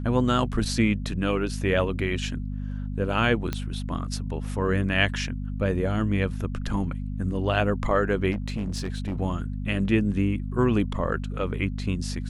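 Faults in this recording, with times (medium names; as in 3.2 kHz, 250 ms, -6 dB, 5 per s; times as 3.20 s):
hum 50 Hz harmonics 5 -31 dBFS
3.53 s: pop -14 dBFS
8.31–9.18 s: clipped -24.5 dBFS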